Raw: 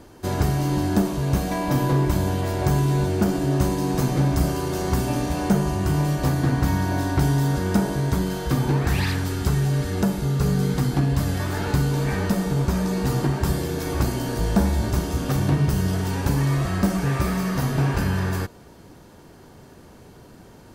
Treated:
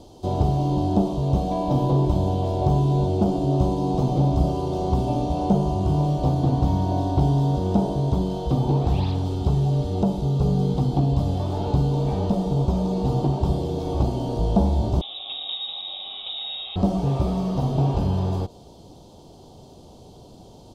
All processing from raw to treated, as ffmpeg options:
ffmpeg -i in.wav -filter_complex "[0:a]asettb=1/sr,asplit=3[link_01][link_02][link_03];[link_01]atrim=end=15.014[link_04];[link_02]atrim=start=15.01:end=16.76,asetpts=PTS-STARTPTS,afade=type=in:duration=0.004:curve=qsin,afade=type=out:start_time=1.746:duration=0.004:curve=qsin,highpass=frequency=180:poles=1,lowpass=frequency=3300:width_type=q:width=0.5098,lowpass=frequency=3300:width_type=q:width=0.6013,lowpass=frequency=3300:width_type=q:width=0.9,lowpass=frequency=3300:width_type=q:width=2.563,afreqshift=-3900[link_05];[link_03]atrim=start=16.756[link_06];[link_04][link_05]acrossfade=duration=0.004:curve1=hsin:curve2=qsin[link_07];[link_07][link_06]acrossfade=duration=0.004:curve1=qsin:curve2=hsin,firequalizer=gain_entry='entry(230,0);entry(750,8);entry(1700,-21);entry(3300,9);entry(14000,-6)':delay=0.05:min_phase=1,acrossover=split=2700[link_08][link_09];[link_09]acompressor=threshold=-48dB:ratio=4:attack=1:release=60[link_10];[link_08][link_10]amix=inputs=2:normalize=0,lowshelf=frequency=280:gain=5.5,volume=-4dB" out.wav

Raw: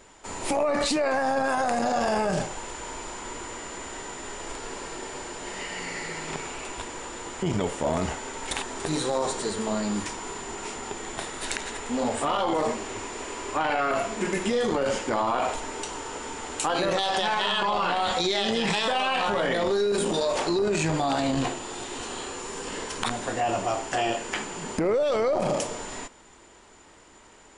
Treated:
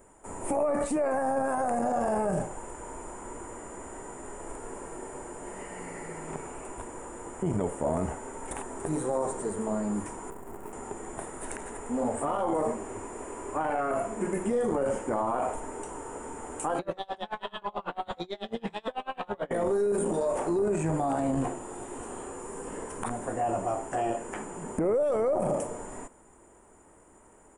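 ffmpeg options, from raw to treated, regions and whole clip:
ffmpeg -i in.wav -filter_complex "[0:a]asettb=1/sr,asplit=3[link_01][link_02][link_03];[link_01]atrim=end=10.304[link_04];[link_02]atrim=start=10.3:end=10.73,asetpts=PTS-STARTPTS,afade=type=in:duration=0.004:curve=qsin,afade=type=out:start_time=0.426:duration=0.004:curve=qsin,acrusher=bits=6:dc=4:mix=0:aa=0.000001,lowpass=frequency=1500:poles=1[link_05];[link_03]atrim=start=10.726[link_06];[link_04][link_05]acrossfade=duration=0.004:curve1=hsin:curve2=qsin[link_07];[link_07][link_06]acrossfade=duration=0.004:curve1=qsin:curve2=hsin,asettb=1/sr,asplit=3[link_08][link_09][link_10];[link_08]atrim=end=16.794[link_11];[link_09]atrim=start=16.79:end=19.51,asetpts=PTS-STARTPTS,afade=type=in:duration=0.004:curve=qsin,afade=type=out:start_time=2.716:duration=0.004:curve=qsin,lowpass=frequency=3800:width_type=q:width=5.1,aeval=exprs='val(0)*pow(10,-31*(0.5-0.5*cos(2*PI*9.1*n/s))/20)':channel_layout=same[link_12];[link_10]atrim=start=19.506[link_13];[link_11][link_12]acrossfade=duration=0.004:curve1=hsin:curve2=qsin[link_14];[link_14][link_13]acrossfade=duration=0.004:curve1=qsin:curve2=hsin,acrossover=split=7800[link_15][link_16];[link_16]acompressor=threshold=-52dB:ratio=4:attack=1:release=60[link_17];[link_15][link_17]amix=inputs=2:normalize=0,firequalizer=gain_entry='entry(620,0);entry(4200,-26);entry(8900,7)':delay=0.05:min_phase=1,volume=-2dB" out.wav

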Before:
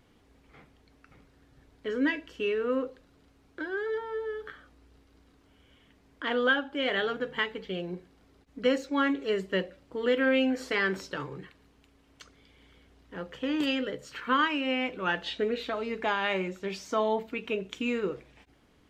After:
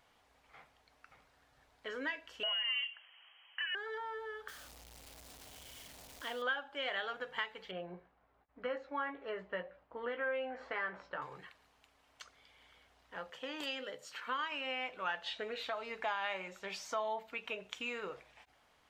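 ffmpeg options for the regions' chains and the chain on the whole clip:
ffmpeg -i in.wav -filter_complex "[0:a]asettb=1/sr,asplit=3[link_01][link_02][link_03];[link_01]atrim=end=2.434[link_04];[link_02]atrim=start=2.43:end=3.75,asetpts=PTS-STARTPTS,afade=type=in:duration=0.004:curve=qsin,afade=type=out:start_time=1.316:duration=0.004:curve=qsin,asplit=2[link_05][link_06];[link_06]highpass=frequency=720:poles=1,volume=14dB,asoftclip=type=tanh:threshold=-19.5dB[link_07];[link_05][link_07]amix=inputs=2:normalize=0,lowpass=frequency=2400:poles=1,volume=-6dB,lowpass=frequency=2800:width_type=q:width=0.5098,lowpass=frequency=2800:width_type=q:width=0.6013,lowpass=frequency=2800:width_type=q:width=0.9,lowpass=frequency=2800:width_type=q:width=2.563,afreqshift=-3300[link_08];[link_03]atrim=start=3.746[link_09];[link_04][link_08]acrossfade=duration=0.004:curve1=hsin:curve2=qsin[link_10];[link_10][link_09]acrossfade=duration=0.004:curve1=qsin:curve2=hsin,asettb=1/sr,asplit=3[link_11][link_12][link_13];[link_11]atrim=end=4.484[link_14];[link_12]atrim=start=4.48:end=6.42,asetpts=PTS-STARTPTS,afade=type=in:duration=0.004:curve=qsin,afade=type=out:start_time=1.936:duration=0.004:curve=qsin,aeval=exprs='val(0)+0.5*0.0106*sgn(val(0))':channel_layout=same,equalizer=frequency=1300:width=0.61:gain=-12[link_15];[link_13]atrim=start=6.416[link_16];[link_14][link_15]acrossfade=duration=0.004:curve1=hsin:curve2=qsin[link_17];[link_17][link_16]acrossfade=duration=0.004:curve1=qsin:curve2=hsin,asettb=1/sr,asplit=3[link_18][link_19][link_20];[link_18]atrim=end=7.714[link_21];[link_19]atrim=start=7.71:end=11.22,asetpts=PTS-STARTPTS,afade=type=in:duration=0.004:curve=qsin,afade=type=out:start_time=3.506:duration=0.004:curve=qsin,agate=range=-33dB:threshold=-59dB:ratio=3:release=100:detection=peak,lowpass=1600,asplit=2[link_22][link_23];[link_23]adelay=17,volume=-7dB[link_24];[link_22][link_24]amix=inputs=2:normalize=0,atrim=end_sample=154791[link_25];[link_20]atrim=start=11.216[link_26];[link_21][link_25]acrossfade=duration=0.004:curve1=hsin:curve2=qsin[link_27];[link_27][link_26]acrossfade=duration=0.004:curve1=qsin:curve2=hsin,asettb=1/sr,asplit=3[link_28][link_29][link_30];[link_28]atrim=end=13.304[link_31];[link_29]atrim=start=13.3:end=14.52,asetpts=PTS-STARTPTS,afade=type=in:duration=0.004:curve=qsin,afade=type=out:start_time=1.216:duration=0.004:curve=qsin,highpass=160,equalizer=frequency=1400:width=0.61:gain=-5[link_32];[link_30]atrim=start=14.516[link_33];[link_31][link_32]acrossfade=duration=0.004:curve1=hsin:curve2=qsin[link_34];[link_34][link_33]acrossfade=duration=0.004:curve1=qsin:curve2=hsin,lowshelf=frequency=490:width_type=q:width=1.5:gain=-12,acompressor=threshold=-37dB:ratio=2,volume=-2dB" out.wav

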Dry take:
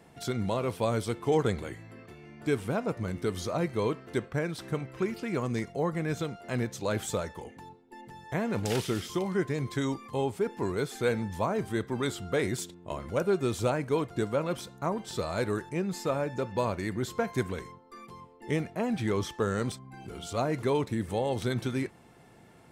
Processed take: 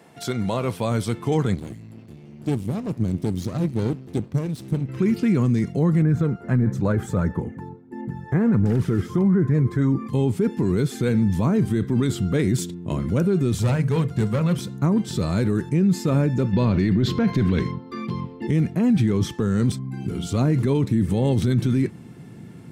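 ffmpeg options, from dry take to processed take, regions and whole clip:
ffmpeg -i in.wav -filter_complex "[0:a]asettb=1/sr,asplit=3[link_01][link_02][link_03];[link_01]atrim=end=1.544[link_04];[link_02]atrim=start=1.54:end=4.89,asetpts=PTS-STARTPTS,afade=type=in:duration=0.004:curve=qsin,afade=type=out:start_time=3.346:duration=0.004:curve=qsin,equalizer=frequency=1500:width_type=o:width=1.4:gain=-13.5,aeval=exprs='max(val(0),0)':channel_layout=same[link_05];[link_03]atrim=start=4.886[link_06];[link_04][link_05]acrossfade=duration=0.004:curve1=hsin:curve2=qsin[link_07];[link_07][link_06]acrossfade=duration=0.004:curve1=qsin:curve2=hsin,asettb=1/sr,asplit=3[link_08][link_09][link_10];[link_08]atrim=end=6.024[link_11];[link_09]atrim=start=6.02:end=10.07,asetpts=PTS-STARTPTS,afade=type=in:duration=0.004:curve=qsin,afade=type=out:start_time=4.046:duration=0.004:curve=qsin,highshelf=frequency=2200:width_type=q:width=1.5:gain=-11.5,aphaser=in_gain=1:out_gain=1:delay=2.5:decay=0.36:speed=1.5:type=sinusoidal[link_12];[link_10]atrim=start=10.066[link_13];[link_11][link_12]acrossfade=duration=0.004:curve1=hsin:curve2=qsin[link_14];[link_14][link_13]acrossfade=duration=0.004:curve1=qsin:curve2=hsin,asettb=1/sr,asplit=3[link_15][link_16][link_17];[link_15]atrim=end=13.524[link_18];[link_16]atrim=start=13.52:end=14.58,asetpts=PTS-STARTPTS,afade=type=in:duration=0.004:curve=qsin,afade=type=out:start_time=1.056:duration=0.004:curve=qsin,aeval=exprs='clip(val(0),-1,0.0501)':channel_layout=same,equalizer=frequency=300:width=2.8:gain=-14.5,bandreject=frequency=50:width_type=h:width=6,bandreject=frequency=100:width_type=h:width=6,bandreject=frequency=150:width_type=h:width=6,bandreject=frequency=200:width_type=h:width=6,bandreject=frequency=250:width_type=h:width=6,bandreject=frequency=300:width_type=h:width=6,bandreject=frequency=350:width_type=h:width=6,bandreject=frequency=400:width_type=h:width=6,bandreject=frequency=450:width_type=h:width=6,bandreject=frequency=500:width_type=h:width=6[link_19];[link_17]atrim=start=14.576[link_20];[link_18][link_19]acrossfade=duration=0.004:curve1=hsin:curve2=qsin[link_21];[link_21][link_20]acrossfade=duration=0.004:curve1=qsin:curve2=hsin,asettb=1/sr,asplit=3[link_22][link_23][link_24];[link_22]atrim=end=16.534[link_25];[link_23]atrim=start=16.53:end=18.47,asetpts=PTS-STARTPTS,afade=type=in:duration=0.004:curve=qsin,afade=type=out:start_time=1.936:duration=0.004:curve=qsin,acontrast=77,highshelf=frequency=5900:width_type=q:width=1.5:gain=-12[link_26];[link_24]atrim=start=18.466[link_27];[link_25][link_26]acrossfade=duration=0.004:curve1=hsin:curve2=qsin[link_28];[link_28][link_27]acrossfade=duration=0.004:curve1=qsin:curve2=hsin,highpass=150,asubboost=boost=10:cutoff=210,alimiter=limit=-18.5dB:level=0:latency=1:release=18,volume=6dB" out.wav

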